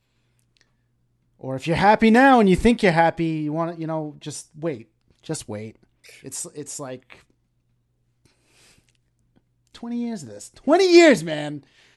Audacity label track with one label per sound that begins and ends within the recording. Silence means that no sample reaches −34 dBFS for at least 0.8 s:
1.430000	7.120000	sound